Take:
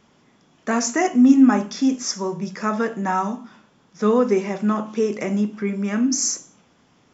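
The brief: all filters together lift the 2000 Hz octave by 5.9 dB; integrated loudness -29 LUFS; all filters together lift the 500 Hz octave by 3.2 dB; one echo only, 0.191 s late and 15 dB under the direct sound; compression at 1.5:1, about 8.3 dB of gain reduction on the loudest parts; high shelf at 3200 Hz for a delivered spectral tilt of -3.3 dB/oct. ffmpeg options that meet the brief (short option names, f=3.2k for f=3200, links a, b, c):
-af "equalizer=f=500:t=o:g=3.5,equalizer=f=2k:t=o:g=4.5,highshelf=f=3.2k:g=8,acompressor=threshold=-31dB:ratio=1.5,aecho=1:1:191:0.178,volume=-4.5dB"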